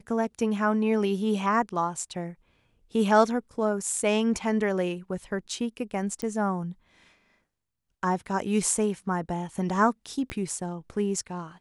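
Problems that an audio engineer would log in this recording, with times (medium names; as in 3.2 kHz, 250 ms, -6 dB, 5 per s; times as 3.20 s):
6.22 s: pop -16 dBFS
10.30 s: pop -19 dBFS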